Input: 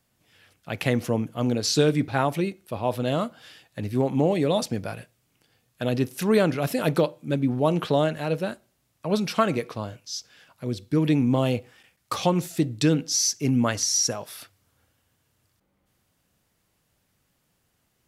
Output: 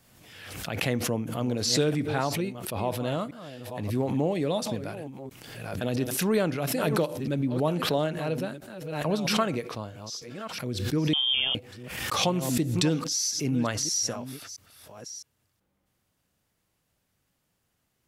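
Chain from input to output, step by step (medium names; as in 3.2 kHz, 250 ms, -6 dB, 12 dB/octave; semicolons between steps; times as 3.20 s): chunks repeated in reverse 662 ms, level -13 dB; 11.13–11.55 s: frequency inversion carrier 3.4 kHz; swell ahead of each attack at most 43 dB/s; trim -5 dB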